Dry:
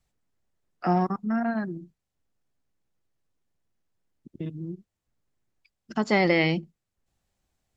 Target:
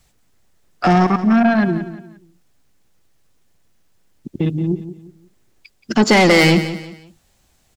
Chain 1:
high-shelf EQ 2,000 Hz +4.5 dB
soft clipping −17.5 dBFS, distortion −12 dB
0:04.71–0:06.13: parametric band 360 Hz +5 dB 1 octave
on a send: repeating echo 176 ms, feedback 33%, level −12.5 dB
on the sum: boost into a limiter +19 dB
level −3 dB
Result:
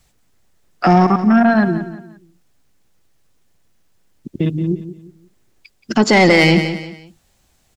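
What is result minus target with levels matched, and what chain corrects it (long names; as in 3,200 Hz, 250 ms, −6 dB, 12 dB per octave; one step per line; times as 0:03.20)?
soft clipping: distortion −6 dB
high-shelf EQ 2,000 Hz +4.5 dB
soft clipping −24.5 dBFS, distortion −7 dB
0:04.71–0:06.13: parametric band 360 Hz +5 dB 1 octave
on a send: repeating echo 176 ms, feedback 33%, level −12.5 dB
on the sum: boost into a limiter +19 dB
level −3 dB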